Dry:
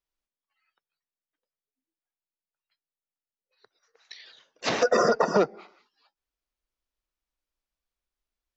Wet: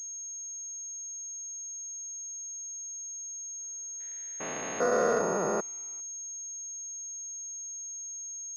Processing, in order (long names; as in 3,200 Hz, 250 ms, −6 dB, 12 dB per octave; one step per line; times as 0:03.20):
spectrum averaged block by block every 400 ms
low-pass that shuts in the quiet parts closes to 2,000 Hz, open at −26 dBFS
switching amplifier with a slow clock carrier 6,500 Hz